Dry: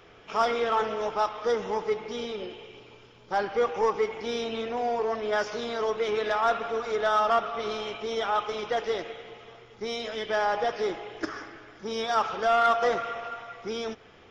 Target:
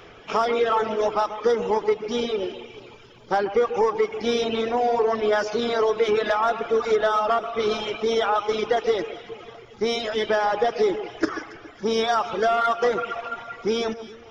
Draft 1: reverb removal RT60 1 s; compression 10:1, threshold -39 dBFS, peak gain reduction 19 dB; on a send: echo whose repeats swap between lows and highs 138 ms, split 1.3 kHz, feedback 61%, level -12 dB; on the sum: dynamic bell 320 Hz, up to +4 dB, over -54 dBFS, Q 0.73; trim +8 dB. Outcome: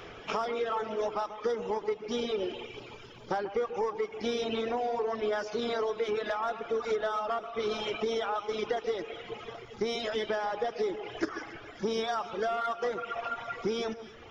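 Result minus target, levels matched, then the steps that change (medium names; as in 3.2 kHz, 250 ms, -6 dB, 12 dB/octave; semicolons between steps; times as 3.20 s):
compression: peak gain reduction +10.5 dB
change: compression 10:1, threshold -27.5 dBFS, peak gain reduction 8.5 dB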